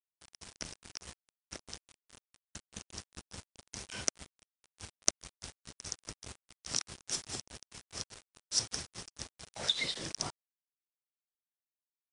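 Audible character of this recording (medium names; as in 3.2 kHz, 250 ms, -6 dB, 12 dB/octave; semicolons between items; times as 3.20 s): tremolo triangle 4.8 Hz, depth 95%; a quantiser's noise floor 8-bit, dither none; MP3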